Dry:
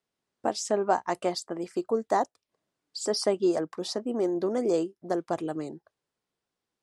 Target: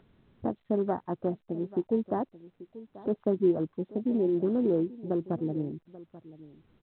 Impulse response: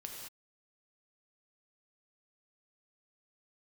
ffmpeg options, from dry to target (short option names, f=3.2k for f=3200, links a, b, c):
-af "aemphasis=mode=reproduction:type=riaa,afwtdn=0.0316,firequalizer=gain_entry='entry(230,0);entry(720,-8);entry(1700,-4);entry(2500,-16)':delay=0.05:min_phase=1,acompressor=mode=upward:threshold=-32dB:ratio=2.5,aecho=1:1:836:0.126,volume=-2dB" -ar 8000 -c:a pcm_alaw